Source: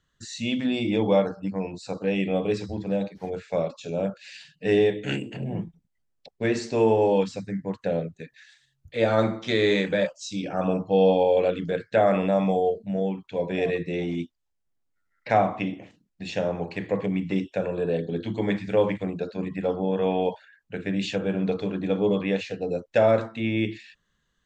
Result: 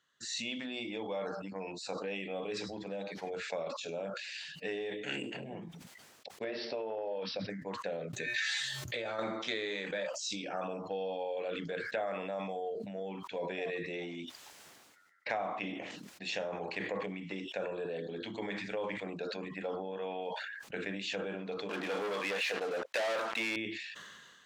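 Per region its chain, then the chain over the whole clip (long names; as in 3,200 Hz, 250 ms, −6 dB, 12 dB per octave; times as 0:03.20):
0:06.44–0:07.50: parametric band 590 Hz +12.5 dB 0.58 octaves + downward compressor, threshold −23 dBFS + bad sample-rate conversion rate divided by 4×, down none, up filtered
0:08.13–0:09.19: tuned comb filter 120 Hz, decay 0.25 s, harmonics odd, mix 80% + envelope flattener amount 100%
0:21.69–0:23.56: high-pass filter 1,200 Hz 6 dB per octave + high-shelf EQ 2,700 Hz −11 dB + leveller curve on the samples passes 5
whole clip: downward compressor 6 to 1, threshold −31 dBFS; meter weighting curve A; level that may fall only so fast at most 30 dB per second; level −1 dB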